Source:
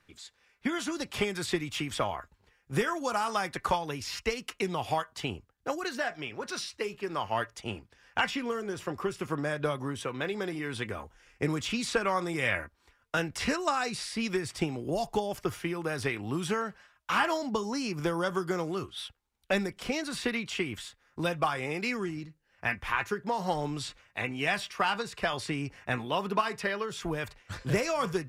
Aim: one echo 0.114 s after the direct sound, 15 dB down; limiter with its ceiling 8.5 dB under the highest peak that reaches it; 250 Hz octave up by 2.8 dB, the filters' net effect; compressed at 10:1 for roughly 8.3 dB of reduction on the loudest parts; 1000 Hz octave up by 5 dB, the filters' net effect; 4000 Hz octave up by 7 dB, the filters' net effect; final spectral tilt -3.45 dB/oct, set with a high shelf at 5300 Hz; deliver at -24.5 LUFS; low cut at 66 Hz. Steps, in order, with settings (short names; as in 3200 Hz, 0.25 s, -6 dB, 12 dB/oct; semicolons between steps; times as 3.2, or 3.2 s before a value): HPF 66 Hz; bell 250 Hz +3.5 dB; bell 1000 Hz +5.5 dB; bell 4000 Hz +6 dB; high shelf 5300 Hz +7 dB; compressor 10:1, threshold -26 dBFS; limiter -21.5 dBFS; echo 0.114 s -15 dB; gain +8.5 dB